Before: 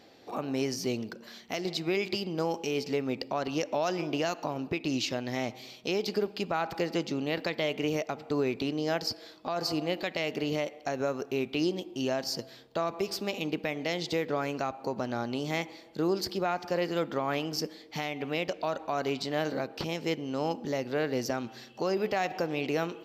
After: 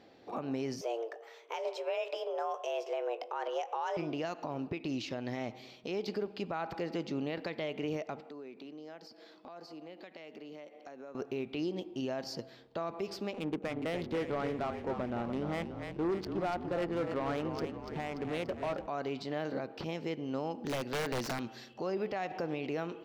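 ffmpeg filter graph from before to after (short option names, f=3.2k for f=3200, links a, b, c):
-filter_complex "[0:a]asettb=1/sr,asplit=3[a][b][c];[a]atrim=end=0.814[d];[b]atrim=start=0.81:end=3.97,asetpts=PTS-STARTPTS,afade=t=in:d=0.004:c=qsin,afade=t=out:st=3.156:d=0.004:c=qsin,equalizer=f=4.3k:w=3.5:g=-11.5,afreqshift=230,asplit=2[e][f];[f]adelay=22,volume=-14dB[g];[e][g]amix=inputs=2:normalize=0,atrim=end_sample=139356[h];[c]atrim=start=3.966[i];[d][h]acrossfade=d=0.004:c1=hsin:c2=qsin[j];[j][i]acrossfade=d=0.004:c1=qsin:c2=hsin,asettb=1/sr,asplit=3[k][l][m];[k]atrim=end=8.204[n];[l]atrim=start=8.2:end=11.15,asetpts=PTS-STARTPTS,afade=t=in:d=0.004:c=qsin,afade=t=out:st=2.946:d=0.004:c=qsin,highpass=f=180:w=0.5412,highpass=f=180:w=1.3066,acompressor=threshold=-47dB:ratio=3:attack=3.2:release=140:knee=1:detection=peak[o];[m]atrim=start=11.146[p];[n][o]acrossfade=d=0.004:c1=hsin:c2=qsin[q];[q][p]acrossfade=d=0.004:c1=qsin:c2=hsin,asettb=1/sr,asplit=3[r][s][t];[r]atrim=end=13.334[u];[s]atrim=start=13.33:end=18.87,asetpts=PTS-STARTPTS,afade=t=in:d=0.004:c=qsin,afade=t=out:st=5.536:d=0.004:c=qsin,adynamicsmooth=sensitivity=5.5:basefreq=570,asplit=7[v][w][x][y][z][aa][ab];[w]adelay=290,afreqshift=-37,volume=-8.5dB[ac];[x]adelay=580,afreqshift=-74,volume=-14dB[ad];[y]adelay=870,afreqshift=-111,volume=-19.5dB[ae];[z]adelay=1160,afreqshift=-148,volume=-25dB[af];[aa]adelay=1450,afreqshift=-185,volume=-30.6dB[ag];[ab]adelay=1740,afreqshift=-222,volume=-36.1dB[ah];[v][ac][ad][ae][af][ag][ah]amix=inputs=7:normalize=0,atrim=end_sample=244314,volume=26dB,asoftclip=hard,volume=-26dB[ai];[t]atrim=start=18.866[aj];[u][ai]acrossfade=d=0.004:c1=hsin:c2=qsin[ak];[ak][aj]acrossfade=d=0.004:c1=qsin:c2=hsin,asettb=1/sr,asplit=3[al][am][an];[al]atrim=end=20.664[ao];[am]atrim=start=20.66:end=21.74,asetpts=PTS-STARTPTS,afade=t=in:d=0.004:c=qsin,afade=t=out:st=1.076:d=0.004:c=qsin,highshelf=f=3.7k:g=9.5,aeval=exprs='(mod(15.8*val(0)+1,2)-1)/15.8':c=same[ap];[an]atrim=start=21.736[aq];[ao][ap]acrossfade=d=0.004:c1=hsin:c2=qsin[ar];[ar][aq]acrossfade=d=0.004:c1=qsin:c2=hsin,alimiter=limit=-23.5dB:level=0:latency=1:release=80,lowpass=f=2.4k:p=1,volume=-2dB"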